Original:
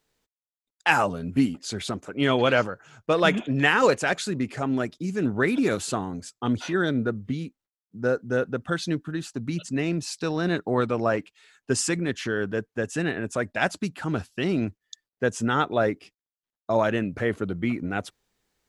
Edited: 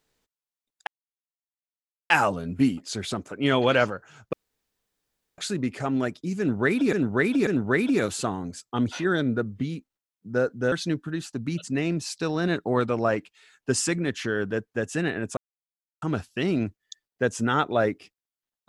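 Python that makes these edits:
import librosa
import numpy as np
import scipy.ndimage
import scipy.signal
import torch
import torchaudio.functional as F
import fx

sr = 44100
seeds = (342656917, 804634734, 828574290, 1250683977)

y = fx.edit(x, sr, fx.insert_silence(at_s=0.87, length_s=1.23),
    fx.room_tone_fill(start_s=3.1, length_s=1.05),
    fx.repeat(start_s=5.16, length_s=0.54, count=3),
    fx.cut(start_s=8.41, length_s=0.32),
    fx.silence(start_s=13.38, length_s=0.65), tone=tone)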